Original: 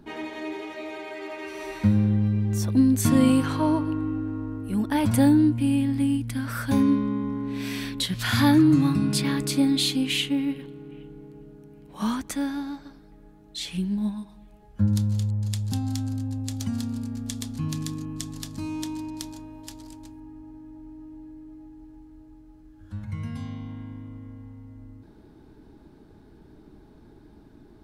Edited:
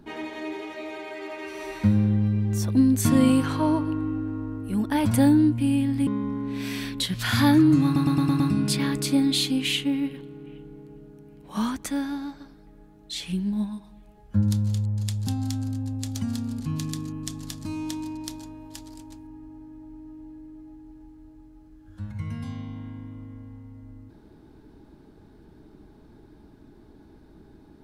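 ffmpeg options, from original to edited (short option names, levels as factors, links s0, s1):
-filter_complex "[0:a]asplit=8[s0][s1][s2][s3][s4][s5][s6][s7];[s0]atrim=end=6.072[s8];[s1]atrim=start=7.068:end=8.962[s9];[s2]atrim=start=8.848:end=8.962[s10];[s3]atrim=start=8.848:end=8.962[s11];[s4]atrim=start=8.848:end=8.962[s12];[s5]atrim=start=8.848:end=8.962[s13];[s6]atrim=start=8.848:end=17.052[s14];[s7]atrim=start=17.528[s15];[s8][s9]acrossfade=d=0.004:c1=hsin:c2=hsin[s16];[s16][s10]acrossfade=d=0.004:c1=hsin:c2=hsin[s17];[s17][s11]acrossfade=d=0.004:c1=hsin:c2=hsin[s18];[s18][s12]acrossfade=d=0.004:c1=hsin:c2=hsin[s19];[s19][s13]acrossfade=d=0.004:c1=hsin:c2=hsin[s20];[s20][s14]acrossfade=d=0.004:c1=hsin:c2=hsin[s21];[s21][s15]acrossfade=d=0.004:c1=hsin:c2=hsin"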